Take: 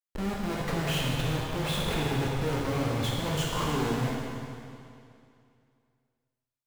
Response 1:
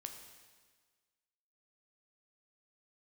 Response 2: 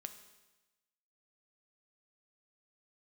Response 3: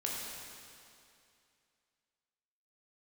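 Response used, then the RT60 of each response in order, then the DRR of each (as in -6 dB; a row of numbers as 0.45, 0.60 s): 3; 1.5, 1.1, 2.5 s; 4.5, 7.5, -4.0 dB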